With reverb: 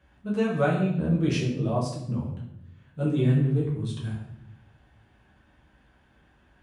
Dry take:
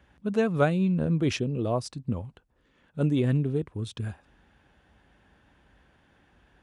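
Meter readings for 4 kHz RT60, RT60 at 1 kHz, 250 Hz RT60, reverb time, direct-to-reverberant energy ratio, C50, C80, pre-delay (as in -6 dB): 0.60 s, 0.70 s, 1.3 s, 0.80 s, -5.5 dB, 4.0 dB, 7.5 dB, 5 ms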